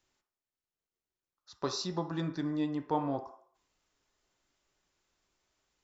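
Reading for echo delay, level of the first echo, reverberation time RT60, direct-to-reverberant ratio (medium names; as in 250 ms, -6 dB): no echo, no echo, 0.60 s, 5.5 dB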